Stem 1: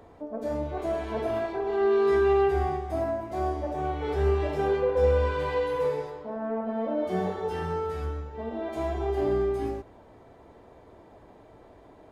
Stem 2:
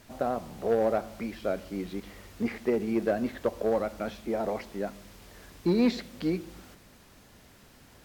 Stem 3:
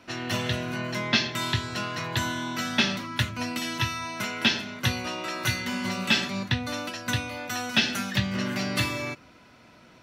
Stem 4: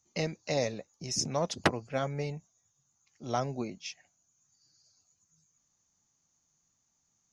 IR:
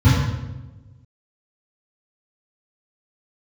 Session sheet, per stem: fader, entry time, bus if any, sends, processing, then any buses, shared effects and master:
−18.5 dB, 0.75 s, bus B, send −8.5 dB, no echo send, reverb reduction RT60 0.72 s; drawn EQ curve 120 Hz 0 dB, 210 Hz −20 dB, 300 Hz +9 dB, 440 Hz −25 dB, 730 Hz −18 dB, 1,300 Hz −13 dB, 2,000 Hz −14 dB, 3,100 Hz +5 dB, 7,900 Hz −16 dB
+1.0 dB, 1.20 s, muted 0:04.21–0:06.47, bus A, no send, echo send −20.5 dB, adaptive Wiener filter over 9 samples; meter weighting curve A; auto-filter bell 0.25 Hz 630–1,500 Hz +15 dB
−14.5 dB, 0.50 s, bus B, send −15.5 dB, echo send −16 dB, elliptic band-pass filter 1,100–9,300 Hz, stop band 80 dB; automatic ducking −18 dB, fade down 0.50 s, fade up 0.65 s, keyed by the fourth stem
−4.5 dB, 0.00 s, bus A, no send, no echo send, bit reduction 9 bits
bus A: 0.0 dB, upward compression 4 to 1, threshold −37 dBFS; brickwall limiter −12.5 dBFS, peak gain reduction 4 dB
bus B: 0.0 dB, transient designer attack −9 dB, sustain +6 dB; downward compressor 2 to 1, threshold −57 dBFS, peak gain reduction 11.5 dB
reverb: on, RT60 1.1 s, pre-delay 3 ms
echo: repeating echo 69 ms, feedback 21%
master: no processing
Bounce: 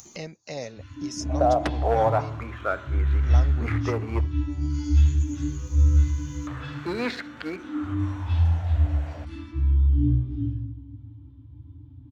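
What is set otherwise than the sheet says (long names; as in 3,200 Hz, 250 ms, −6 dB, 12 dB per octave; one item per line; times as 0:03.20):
stem 3 −14.5 dB → −24.0 dB
stem 4: missing bit reduction 9 bits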